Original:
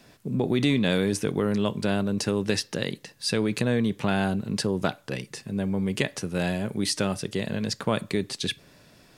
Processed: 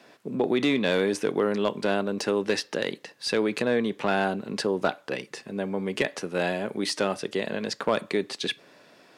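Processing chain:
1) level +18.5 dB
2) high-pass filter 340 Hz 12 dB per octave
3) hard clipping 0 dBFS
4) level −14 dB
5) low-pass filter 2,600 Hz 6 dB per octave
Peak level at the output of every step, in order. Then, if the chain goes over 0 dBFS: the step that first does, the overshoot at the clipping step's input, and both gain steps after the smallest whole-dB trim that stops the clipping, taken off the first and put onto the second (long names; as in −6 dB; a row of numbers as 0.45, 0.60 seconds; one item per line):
+10.5, +7.5, 0.0, −14.0, −14.0 dBFS
step 1, 7.5 dB
step 1 +10.5 dB, step 4 −6 dB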